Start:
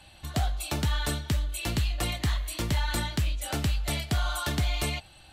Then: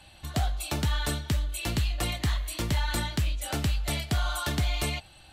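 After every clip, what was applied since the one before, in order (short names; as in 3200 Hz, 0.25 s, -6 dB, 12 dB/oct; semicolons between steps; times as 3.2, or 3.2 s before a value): nothing audible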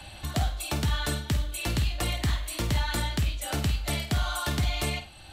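on a send: flutter echo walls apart 8.6 m, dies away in 0.3 s; on the sum: three-band squash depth 40%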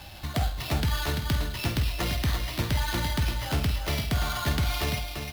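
on a send: echo 0.34 s -6 dB; on the sum: sample-rate reducer 8000 Hz, jitter 0%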